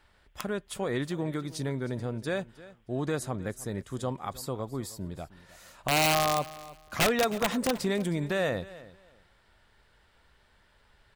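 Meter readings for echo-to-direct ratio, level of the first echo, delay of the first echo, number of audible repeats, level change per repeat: −18.5 dB, −18.5 dB, 313 ms, 2, −13.5 dB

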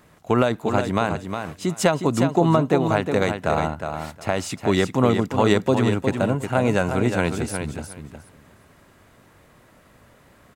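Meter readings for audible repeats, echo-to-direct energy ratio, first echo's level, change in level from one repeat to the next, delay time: 2, −7.0 dB, −7.0 dB, −15.0 dB, 361 ms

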